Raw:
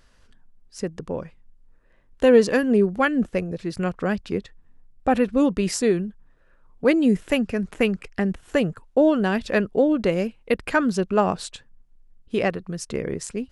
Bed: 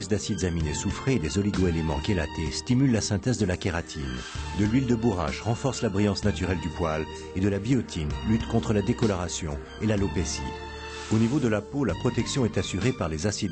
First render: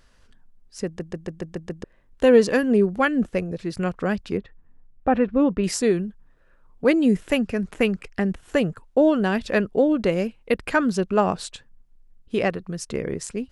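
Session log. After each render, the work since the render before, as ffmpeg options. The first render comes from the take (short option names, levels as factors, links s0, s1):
-filter_complex "[0:a]asettb=1/sr,asplit=3[s0][s1][s2];[s0]atrim=end=4.374[s3];[s1]atrim=start=4.37:end=5.64,asetpts=PTS-STARTPTS,afade=t=in:d=0.004:c=qsin,afade=t=out:st=1.266:d=0.004:c=qsin,lowpass=2200[s4];[s2]atrim=start=5.636[s5];[s3][s4]acrossfade=d=0.004:c1=hsin:c2=qsin[s6];[s6][s5]acrossfade=d=0.004:c1=qsin:c2=hsin,asplit=8[s7][s8][s9][s10][s11][s12][s13][s14];[s7]atrim=end=1.002[s15];[s8]atrim=start=0.858:end=1.002[s16];[s9]atrim=start=0.858:end=1.002[s17];[s10]atrim=start=0.858:end=1.002[s18];[s11]atrim=start=0.858:end=1.002[s19];[s12]atrim=start=0.858:end=1.002[s20];[s13]atrim=start=0.858:end=1.002[s21];[s14]atrim=start=1.838[s22];[s15][s16]acrossfade=d=0.004:c1=hsin:c2=hsin[s23];[s23][s17]acrossfade=d=0.004:c1=hsin:c2=hsin[s24];[s24][s18]acrossfade=d=0.004:c1=hsin:c2=hsin[s25];[s25][s19]acrossfade=d=0.004:c1=hsin:c2=hsin[s26];[s26][s20]acrossfade=d=0.004:c1=hsin:c2=hsin[s27];[s27][s21]acrossfade=d=0.004:c1=hsin:c2=hsin[s28];[s28][s22]acrossfade=d=0.004:c1=hsin:c2=hsin"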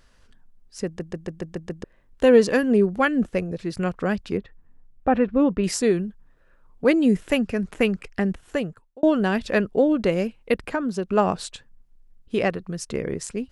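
-filter_complex "[0:a]asettb=1/sr,asplit=3[s0][s1][s2];[s0]atrim=end=10.644[s3];[s1]atrim=start=10.64:end=11.09,asetpts=PTS-STARTPTS,afade=t=in:d=0.004:c=qsin,afade=t=out:st=0.446:d=0.004:c=qsin,acrossover=split=170|1200[s4][s5][s6];[s4]acompressor=threshold=0.00708:ratio=4[s7];[s5]acompressor=threshold=0.0708:ratio=4[s8];[s6]acompressor=threshold=0.0126:ratio=4[s9];[s7][s8][s9]amix=inputs=3:normalize=0[s10];[s2]atrim=start=11.086[s11];[s3][s10]acrossfade=d=0.004:c1=hsin:c2=qsin[s12];[s12][s11]acrossfade=d=0.004:c1=qsin:c2=hsin,asplit=2[s13][s14];[s13]atrim=end=9.03,asetpts=PTS-STARTPTS,afade=t=out:st=8.28:d=0.75[s15];[s14]atrim=start=9.03,asetpts=PTS-STARTPTS,afade=t=in:d=0.004:c=hsin[s16];[s15][s16]concat=n=2:v=0:a=1"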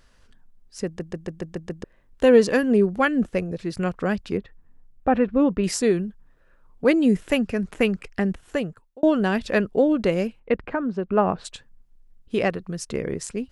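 -filter_complex "[0:a]asplit=3[s0][s1][s2];[s0]afade=t=out:st=10.39:d=0.02[s3];[s1]lowpass=2100,afade=t=in:st=10.39:d=0.02,afade=t=out:st=11.44:d=0.02[s4];[s2]afade=t=in:st=11.44:d=0.02[s5];[s3][s4][s5]amix=inputs=3:normalize=0"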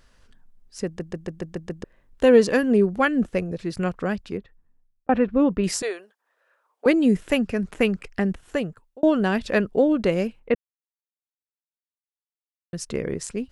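-filter_complex "[0:a]asettb=1/sr,asplit=3[s0][s1][s2];[s0]atrim=end=5.824[s3];[s1]atrim=start=5.82:end=6.86,asetpts=PTS-STARTPTS,afade=t=in:d=0.004:c=qsin,afade=t=out:st=1.036:d=0.004:c=qsin,highpass=f=530:w=0.5412,highpass=f=530:w=1.3066[s4];[s2]atrim=start=6.856[s5];[s3][s4]acrossfade=d=0.004:c1=hsin:c2=qsin[s6];[s6][s5]acrossfade=d=0.004:c1=qsin:c2=hsin,asplit=4[s7][s8][s9][s10];[s7]atrim=end=5.09,asetpts=PTS-STARTPTS,afade=t=out:st=3.86:d=1.23[s11];[s8]atrim=start=5.09:end=10.55,asetpts=PTS-STARTPTS,afade=t=in:d=0.004:c=hsin,afade=t=out:st=5.456:d=0.004:c=hsin[s12];[s9]atrim=start=10.55:end=12.73,asetpts=PTS-STARTPTS,volume=0[s13];[s10]atrim=start=12.73,asetpts=PTS-STARTPTS,afade=t=in:d=0.004:c=hsin[s14];[s11][s12][s13][s14]concat=n=4:v=0:a=1"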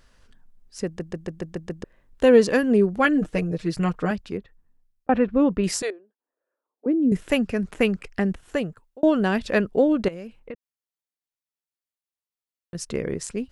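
-filter_complex "[0:a]asettb=1/sr,asplit=3[s0][s1][s2];[s0]atrim=end=3.044[s3];[s1]atrim=start=3.04:end=4.11,asetpts=PTS-STARTPTS,afade=t=in:d=0.004:c=qsin,afade=t=out:st=1.066:d=0.004:c=qsin,aecho=1:1:6.5:0.75,atrim=end_sample=47187[s4];[s2]atrim=start=4.106[s5];[s3][s4]acrossfade=d=0.004:c1=hsin:c2=qsin[s6];[s6][s5]acrossfade=d=0.004:c1=qsin:c2=hsin,asettb=1/sr,asplit=3[s7][s8][s9];[s7]atrim=end=5.904[s10];[s8]atrim=start=5.9:end=7.12,asetpts=PTS-STARTPTS,afade=t=in:d=0.004:c=qsin,afade=t=out:st=1.216:d=0.004:c=qsin,bandpass=f=280:t=q:w=2.6[s11];[s9]atrim=start=7.116[s12];[s10][s11]acrossfade=d=0.004:c1=hsin:c2=qsin[s13];[s13][s12]acrossfade=d=0.004:c1=qsin:c2=hsin,asettb=1/sr,asplit=3[s14][s15][s16];[s14]atrim=end=10.084[s17];[s15]atrim=start=10.08:end=12.75,asetpts=PTS-STARTPTS,afade=t=in:d=0.004:c=qsin,afade=t=out:st=2.666:d=0.004:c=qsin,acompressor=threshold=0.0224:ratio=6:attack=3.2:release=140:knee=1:detection=peak[s18];[s16]atrim=start=12.746[s19];[s17][s18]acrossfade=d=0.004:c1=hsin:c2=qsin[s20];[s20][s19]acrossfade=d=0.004:c1=qsin:c2=hsin"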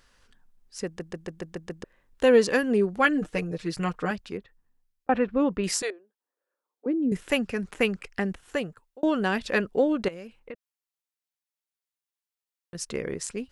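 -af "lowshelf=f=410:g=-7.5,bandreject=f=640:w=12"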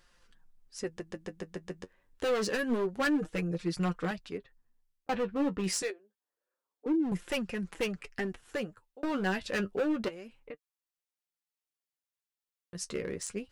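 -af "asoftclip=type=hard:threshold=0.0708,flanger=delay=5.6:depth=5.2:regen=38:speed=0.27:shape=sinusoidal"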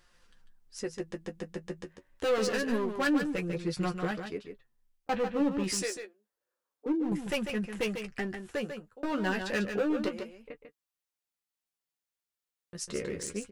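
-filter_complex "[0:a]asplit=2[s0][s1];[s1]adelay=14,volume=0.335[s2];[s0][s2]amix=inputs=2:normalize=0,asplit=2[s3][s4];[s4]aecho=0:1:146:0.422[s5];[s3][s5]amix=inputs=2:normalize=0"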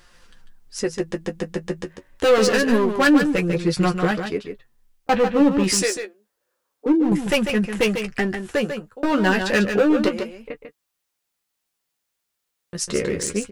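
-af "volume=3.98"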